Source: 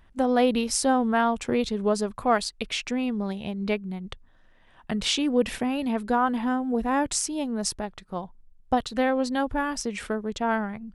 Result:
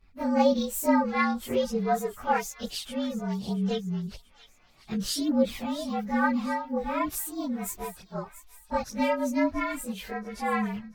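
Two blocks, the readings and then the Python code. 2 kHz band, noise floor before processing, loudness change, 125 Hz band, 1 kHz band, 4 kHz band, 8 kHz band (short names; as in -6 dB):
-2.0 dB, -57 dBFS, -2.5 dB, +1.5 dB, -2.5 dB, -6.0 dB, -6.0 dB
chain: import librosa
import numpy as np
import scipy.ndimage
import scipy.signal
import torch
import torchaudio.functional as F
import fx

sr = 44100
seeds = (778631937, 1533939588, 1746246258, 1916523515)

y = fx.partial_stretch(x, sr, pct=113)
y = fx.chorus_voices(y, sr, voices=2, hz=0.56, base_ms=23, depth_ms=1.8, mix_pct=65)
y = fx.echo_wet_highpass(y, sr, ms=684, feedback_pct=48, hz=1900.0, wet_db=-14.5)
y = y * librosa.db_to_amplitude(2.0)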